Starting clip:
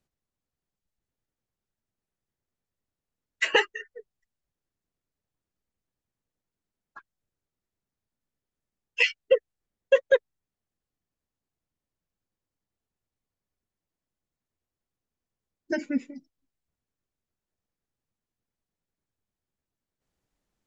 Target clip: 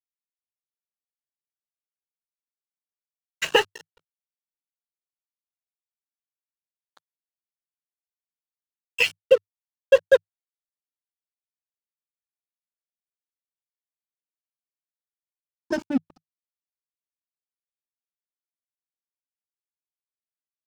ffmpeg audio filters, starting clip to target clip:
-af "aeval=exprs='sgn(val(0))*max(abs(val(0))-0.0168,0)':c=same,equalizer=f=100:t=o:w=0.33:g=7,equalizer=f=160:t=o:w=0.33:g=9,equalizer=f=2000:t=o:w=0.33:g=-10,volume=1.78"

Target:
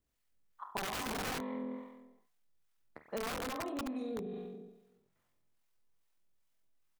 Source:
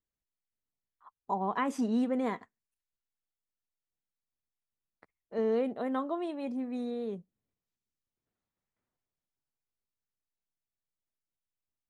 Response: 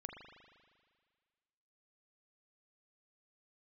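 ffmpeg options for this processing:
-filter_complex "[1:a]atrim=start_sample=2205[s0];[0:a][s0]afir=irnorm=-1:irlink=0,acrossover=split=670[s1][s2];[s1]aeval=exprs='val(0)*(1-0.5/2+0.5/2*cos(2*PI*1.4*n/s))':c=same[s3];[s2]aeval=exprs='val(0)*(1-0.5/2-0.5/2*cos(2*PI*1.4*n/s))':c=same[s4];[s3][s4]amix=inputs=2:normalize=0,aeval=exprs='(mod(42.2*val(0)+1,2)-1)/42.2':c=same,acompressor=threshold=0.00251:ratio=12,atempo=1.7,volume=6.68"

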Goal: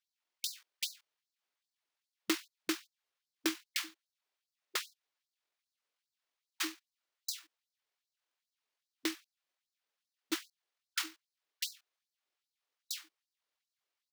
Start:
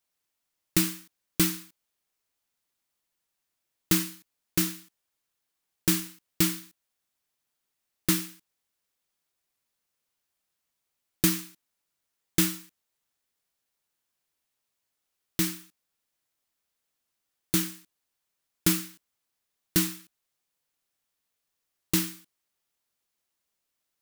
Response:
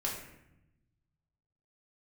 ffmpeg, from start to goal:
-filter_complex "[0:a]acrossover=split=250 5600:gain=0.0708 1 0.2[s0][s1][s2];[s0][s1][s2]amix=inputs=3:normalize=0,atempo=1.7,afftfilt=real='re*gte(b*sr/1024,210*pow(4000/210,0.5+0.5*sin(2*PI*2.5*pts/sr)))':imag='im*gte(b*sr/1024,210*pow(4000/210,0.5+0.5*sin(2*PI*2.5*pts/sr)))':win_size=1024:overlap=0.75,volume=0.841"

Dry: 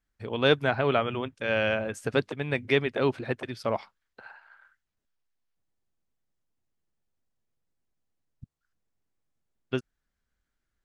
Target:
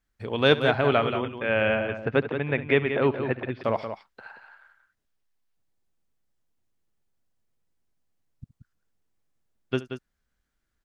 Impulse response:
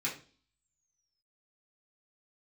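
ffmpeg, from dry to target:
-filter_complex "[0:a]asettb=1/sr,asplit=3[s0][s1][s2];[s0]atrim=end=1.224[s3];[s1]atrim=start=1.22:end=3.64,asetpts=PTS-STARTPTS,afade=t=in:d=0.004:c=qsin,afade=t=out:st=2.416:d=0.004:c=qsin,lowpass=f=2900:w=0.5412,lowpass=f=2900:w=1.3066[s4];[s2]atrim=start=3.636[s5];[s3][s4]acrossfade=d=0.004:c1=hsin:c2=qsin[s6];[s6][s5]acrossfade=d=0.004:c1=qsin:c2=hsin,aecho=1:1:70|180:0.133|0.355,volume=1.33"

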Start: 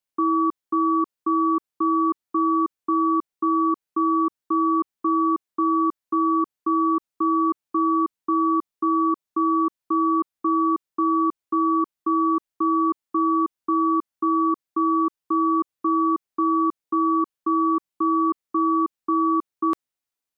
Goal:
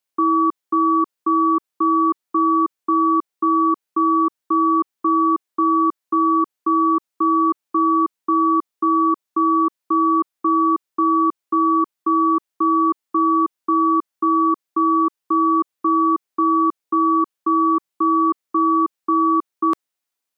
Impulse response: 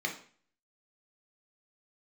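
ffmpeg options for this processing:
-af "lowshelf=f=170:g=-11,volume=1.78"

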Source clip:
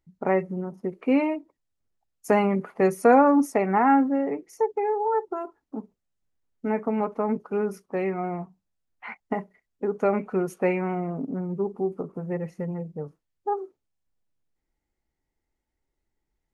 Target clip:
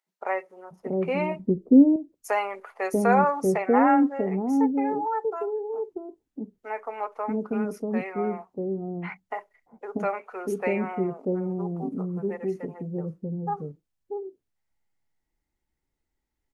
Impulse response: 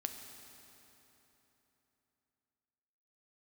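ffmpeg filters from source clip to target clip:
-filter_complex "[0:a]asettb=1/sr,asplit=3[s0][s1][s2];[s0]atrim=end=0.754[s3];[s1]atrim=start=0.75:end=1.32,asetpts=PTS-STARTPTS,afade=t=in:d=0.004:c=qsin,afade=t=out:st=0.566:d=0.004:c=qsin,lowshelf=f=430:g=12[s4];[s2]atrim=start=1.316[s5];[s3][s4]acrossfade=d=0.004:c1=hsin:c2=qsin[s6];[s6][s5]acrossfade=d=0.004:c1=qsin:c2=hsin,acrossover=split=520[s7][s8];[s7]adelay=640[s9];[s9][s8]amix=inputs=2:normalize=0"

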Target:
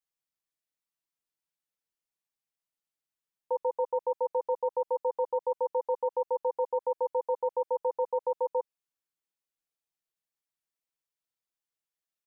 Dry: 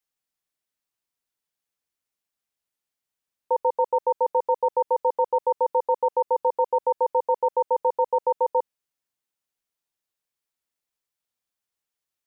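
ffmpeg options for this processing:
-af "aecho=1:1:6.1:0.51,volume=0.398"

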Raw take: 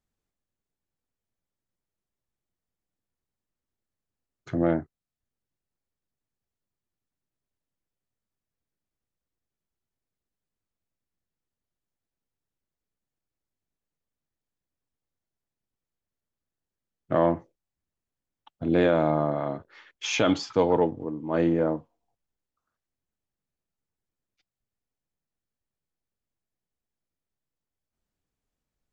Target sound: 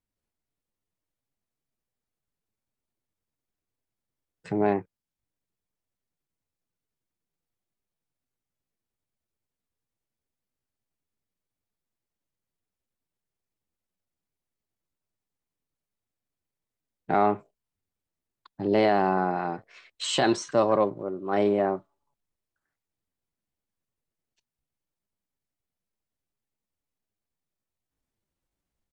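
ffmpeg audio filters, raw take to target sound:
-af "dynaudnorm=f=140:g=3:m=1.68,asetrate=53981,aresample=44100,atempo=0.816958,volume=0.596"

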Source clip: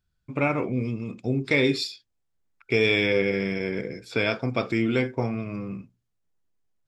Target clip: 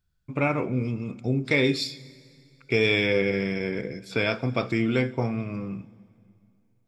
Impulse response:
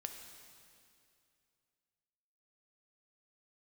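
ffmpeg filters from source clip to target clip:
-filter_complex "[0:a]asplit=2[s0][s1];[s1]equalizer=f=160:t=o:w=0.67:g=5,equalizer=f=400:t=o:w=0.67:g=-5,equalizer=f=2500:t=o:w=0.67:g=-4[s2];[1:a]atrim=start_sample=2205,lowshelf=f=150:g=7.5,highshelf=f=7500:g=9[s3];[s2][s3]afir=irnorm=-1:irlink=0,volume=0.355[s4];[s0][s4]amix=inputs=2:normalize=0,volume=0.794"

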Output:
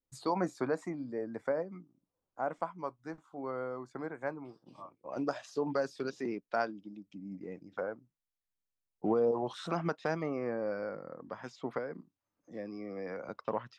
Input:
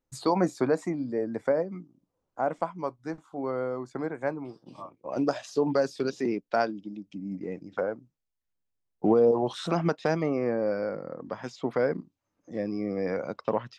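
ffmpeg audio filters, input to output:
-filter_complex "[0:a]adynamicequalizer=threshold=0.00708:dfrequency=1300:dqfactor=1:tfrequency=1300:tqfactor=1:attack=5:release=100:ratio=0.375:range=2.5:mode=boostabove:tftype=bell,asettb=1/sr,asplit=3[s0][s1][s2];[s0]atrim=end=11.784[s3];[s1]atrim=start=11.78:end=13.29,asetpts=PTS-STARTPTS,afade=t=in:d=0.004:c=qsin,afade=t=out:st=1.506:d=0.004:c=qsin,acrossover=split=120|440[s4][s5][s6];[s4]acompressor=threshold=0.001:ratio=4[s7];[s5]acompressor=threshold=0.02:ratio=4[s8];[s6]acompressor=threshold=0.0251:ratio=4[s9];[s7][s8][s9]amix=inputs=3:normalize=0[s10];[s2]atrim=start=13.286[s11];[s3][s10]acrossfade=d=0.004:c1=hsin:c2=qsin[s12];[s12][s11]acrossfade=d=0.004:c1=qsin:c2=hsin,volume=0.376"

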